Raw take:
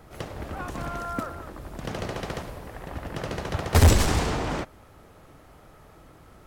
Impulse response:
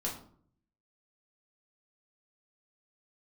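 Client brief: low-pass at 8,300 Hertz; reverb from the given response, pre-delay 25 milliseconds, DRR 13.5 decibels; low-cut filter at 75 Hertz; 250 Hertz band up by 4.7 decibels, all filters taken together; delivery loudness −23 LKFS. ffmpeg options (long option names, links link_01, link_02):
-filter_complex "[0:a]highpass=75,lowpass=8300,equalizer=frequency=250:width_type=o:gain=6,asplit=2[link_01][link_02];[1:a]atrim=start_sample=2205,adelay=25[link_03];[link_02][link_03]afir=irnorm=-1:irlink=0,volume=-16.5dB[link_04];[link_01][link_04]amix=inputs=2:normalize=0,volume=4dB"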